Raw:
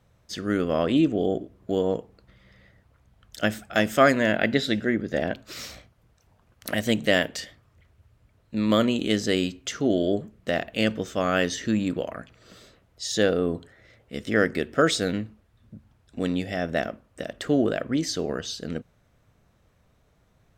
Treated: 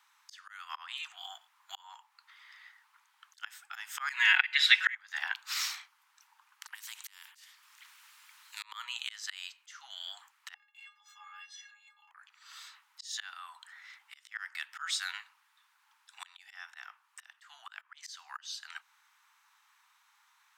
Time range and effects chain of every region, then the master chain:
4.09–4.95 s: peaking EQ 2.5 kHz +11 dB 1.1 oct + comb 5.4 ms, depth 96% + three bands compressed up and down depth 70%
6.75–8.63 s: amplifier tone stack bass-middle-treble 10-0-10 + compression 10:1, threshold -34 dBFS + spectrum-flattening compressor 2:1
10.54–12.11 s: treble shelf 5.6 kHz -7.5 dB + compression 2:1, threshold -36 dBFS + inharmonic resonator 250 Hz, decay 0.38 s, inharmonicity 0.03
whole clip: steep high-pass 850 Hz 96 dB/octave; slow attack 579 ms; trim +5 dB

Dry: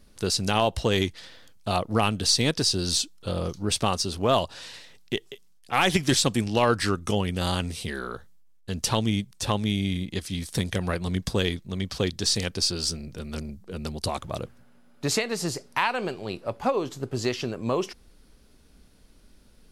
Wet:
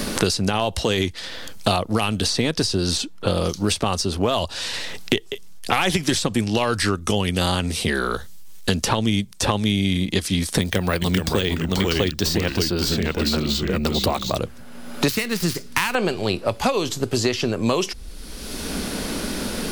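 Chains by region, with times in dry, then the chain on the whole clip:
10.61–14.37 s: ever faster or slower copies 404 ms, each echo -2 st, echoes 2, each echo -6 dB + careless resampling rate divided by 2×, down filtered, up hold
15.08–15.95 s: dead-time distortion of 0.07 ms + peaking EQ 670 Hz -14.5 dB 1.9 oct
whole clip: peaking EQ 130 Hz -9.5 dB 0.29 oct; loudness maximiser +13 dB; three bands compressed up and down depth 100%; trim -7 dB

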